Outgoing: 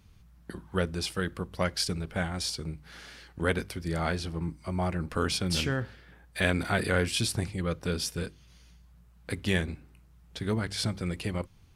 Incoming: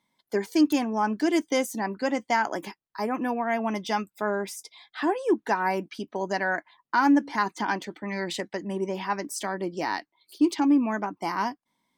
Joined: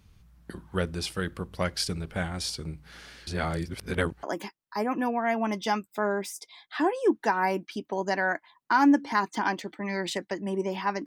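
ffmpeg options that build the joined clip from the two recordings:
ffmpeg -i cue0.wav -i cue1.wav -filter_complex "[0:a]apad=whole_dur=11.06,atrim=end=11.06,asplit=2[link_01][link_02];[link_01]atrim=end=3.272[link_03];[link_02]atrim=start=3.268:end=4.232,asetpts=PTS-STARTPTS,areverse[link_04];[1:a]atrim=start=2.458:end=9.29[link_05];[link_03][link_04]acrossfade=duration=0.004:curve1=hsin:curve2=hsin[link_06];[link_06][link_05]acrossfade=duration=0.004:curve1=hsin:curve2=hsin" out.wav

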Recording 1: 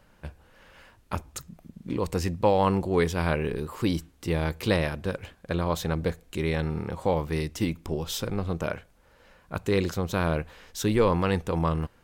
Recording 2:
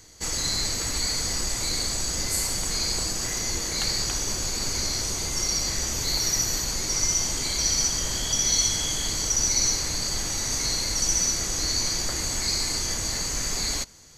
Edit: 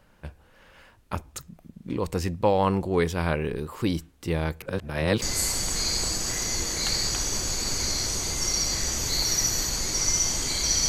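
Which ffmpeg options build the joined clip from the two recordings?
ffmpeg -i cue0.wav -i cue1.wav -filter_complex "[0:a]apad=whole_dur=10.88,atrim=end=10.88,asplit=2[link_01][link_02];[link_01]atrim=end=4.622[link_03];[link_02]atrim=start=4.618:end=5.222,asetpts=PTS-STARTPTS,areverse[link_04];[1:a]atrim=start=2.168:end=7.83[link_05];[link_03][link_04]acrossfade=duration=0.004:curve1=hsin:curve2=hsin[link_06];[link_06][link_05]acrossfade=duration=0.004:curve1=hsin:curve2=hsin" out.wav

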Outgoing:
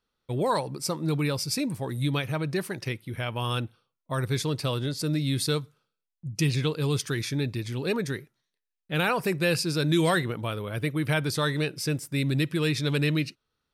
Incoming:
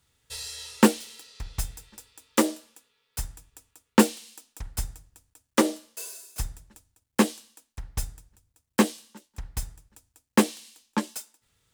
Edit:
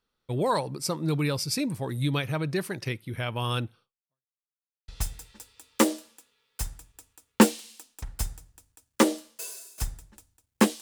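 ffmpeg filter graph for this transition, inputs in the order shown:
ffmpeg -i cue0.wav -i cue1.wav -filter_complex "[0:a]apad=whole_dur=10.81,atrim=end=10.81,asplit=2[link_01][link_02];[link_01]atrim=end=4.34,asetpts=PTS-STARTPTS,afade=type=out:start_time=3.83:duration=0.51:curve=exp[link_03];[link_02]atrim=start=4.34:end=4.88,asetpts=PTS-STARTPTS,volume=0[link_04];[1:a]atrim=start=1.46:end=7.39,asetpts=PTS-STARTPTS,afade=type=in:duration=0.004:curve=hsin[link_05];[link_03][link_04][link_05]concat=n=3:v=0:a=1" out.wav

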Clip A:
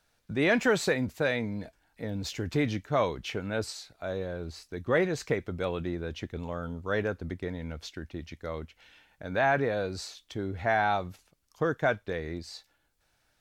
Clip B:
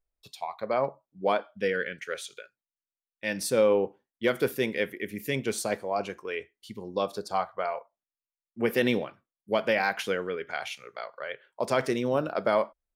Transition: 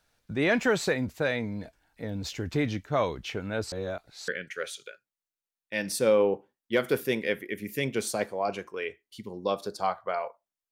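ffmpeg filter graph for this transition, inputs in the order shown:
ffmpeg -i cue0.wav -i cue1.wav -filter_complex "[0:a]apad=whole_dur=10.71,atrim=end=10.71,asplit=2[link_01][link_02];[link_01]atrim=end=3.722[link_03];[link_02]atrim=start=3.718:end=4.282,asetpts=PTS-STARTPTS,areverse[link_04];[1:a]atrim=start=1.788:end=8.22[link_05];[link_03][link_04]acrossfade=duration=0.004:curve1=hsin:curve2=hsin[link_06];[link_06][link_05]acrossfade=duration=0.004:curve1=hsin:curve2=hsin" out.wav

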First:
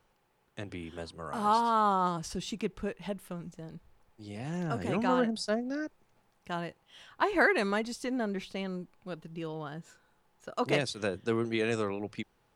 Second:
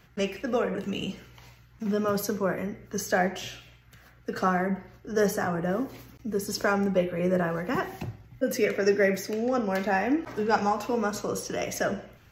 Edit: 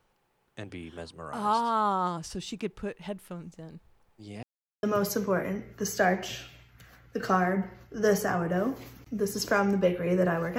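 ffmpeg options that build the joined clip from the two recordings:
ffmpeg -i cue0.wav -i cue1.wav -filter_complex "[0:a]apad=whole_dur=10.58,atrim=end=10.58,asplit=2[link_01][link_02];[link_01]atrim=end=4.43,asetpts=PTS-STARTPTS,afade=type=out:start_time=4.426:duration=0.004:curve=hsin[link_03];[link_02]atrim=start=4.43:end=4.83,asetpts=PTS-STARTPTS,volume=0[link_04];[1:a]atrim=start=1.96:end=7.71,asetpts=PTS-STARTPTS,afade=type=in:duration=0.004:curve=hsin[link_05];[link_03][link_04][link_05]concat=n=3:v=0:a=1" out.wav

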